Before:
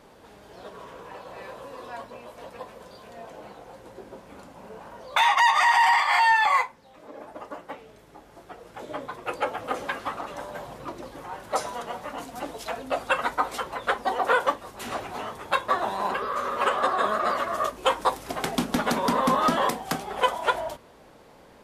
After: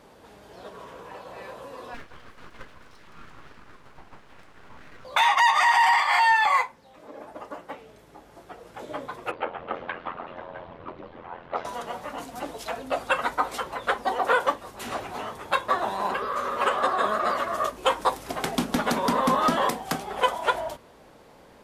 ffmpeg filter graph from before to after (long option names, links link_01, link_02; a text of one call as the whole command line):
ffmpeg -i in.wav -filter_complex "[0:a]asettb=1/sr,asplit=3[link_01][link_02][link_03];[link_01]atrim=end=1.944[link_04];[link_02]atrim=start=1.94:end=5.05,asetpts=PTS-STARTPTS,afade=type=in:duration=0.004:curve=qsin,afade=type=out:start_time=3.106:duration=0.004:curve=qsin,lowpass=frequency=2800:poles=1,equalizer=frequency=130:width=0.84:gain=-12.5,aeval=exprs='abs(val(0))':channel_layout=same[link_05];[link_03]atrim=start=5.046[link_06];[link_04][link_05]acrossfade=duration=0.004:curve1=hsin:curve2=qsin[link_07];[link_07][link_06]acrossfade=duration=0.004:curve1=qsin:curve2=hsin,asettb=1/sr,asplit=3[link_08][link_09][link_10];[link_08]atrim=end=9.314[link_11];[link_09]atrim=start=9.31:end=11.65,asetpts=PTS-STARTPTS,afade=type=in:duration=0.004:curve=qsin,afade=type=out:start_time=2.336:duration=0.004:curve=qsin,lowpass=frequency=3200:width=0.5412,lowpass=frequency=3200:width=1.3066,aeval=exprs='val(0)*sin(2*PI*43*n/s)':channel_layout=same[link_12];[link_10]atrim=start=11.646[link_13];[link_11][link_12]acrossfade=duration=0.004:curve1=hsin:curve2=qsin[link_14];[link_14][link_13]acrossfade=duration=0.004:curve1=qsin:curve2=hsin" out.wav